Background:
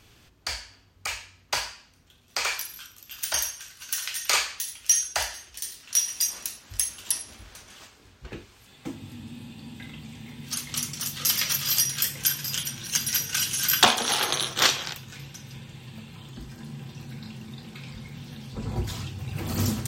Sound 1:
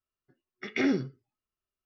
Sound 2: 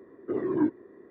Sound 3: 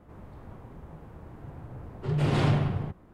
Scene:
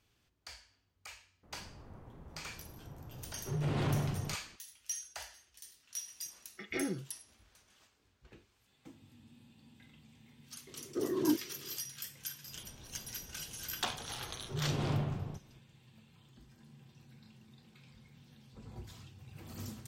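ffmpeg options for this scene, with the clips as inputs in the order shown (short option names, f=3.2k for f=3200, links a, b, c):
-filter_complex "[3:a]asplit=2[a][b];[0:a]volume=-18.5dB[c];[a]asoftclip=type=tanh:threshold=-17dB[d];[1:a]aecho=1:1:6:0.65[e];[b]equalizer=f=1.9k:t=o:w=0.77:g=-3.5[f];[d]atrim=end=3.13,asetpts=PTS-STARTPTS,volume=-7dB,afade=t=in:d=0.004:c=hsin,afade=t=out:st=3.126:d=0.004:c=hsin,adelay=1430[g];[e]atrim=end=1.85,asetpts=PTS-STARTPTS,volume=-9.5dB,afade=t=in:d=0.004:c=hsin,afade=t=out:st=1.846:d=0.004:c=hsin,adelay=5960[h];[2:a]atrim=end=1.1,asetpts=PTS-STARTPTS,volume=-5dB,afade=t=in:d=0.004:c=hsin,afade=t=out:st=1.096:d=0.004:c=hsin,adelay=10670[i];[f]atrim=end=3.13,asetpts=PTS-STARTPTS,volume=-9.5dB,afade=t=in:d=0.004:c=hsin,afade=t=out:st=3.126:d=0.004:c=hsin,adelay=12460[j];[c][g][h][i][j]amix=inputs=5:normalize=0"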